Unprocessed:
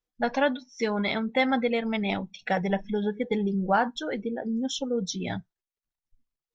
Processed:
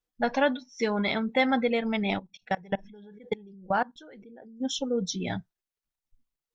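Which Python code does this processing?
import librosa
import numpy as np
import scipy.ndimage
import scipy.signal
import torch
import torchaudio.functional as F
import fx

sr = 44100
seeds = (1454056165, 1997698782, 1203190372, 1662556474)

y = fx.level_steps(x, sr, step_db=24, at=(2.18, 4.6), fade=0.02)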